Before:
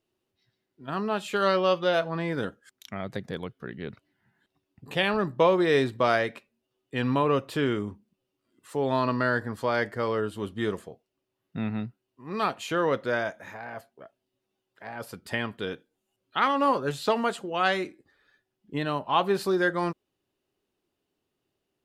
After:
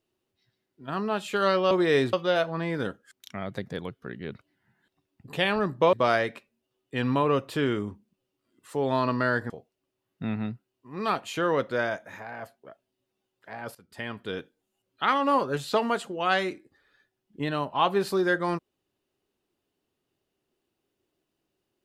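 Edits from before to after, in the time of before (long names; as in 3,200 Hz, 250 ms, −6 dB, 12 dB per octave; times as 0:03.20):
0:05.51–0:05.93: move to 0:01.71
0:09.50–0:10.84: remove
0:15.09–0:15.73: fade in linear, from −19 dB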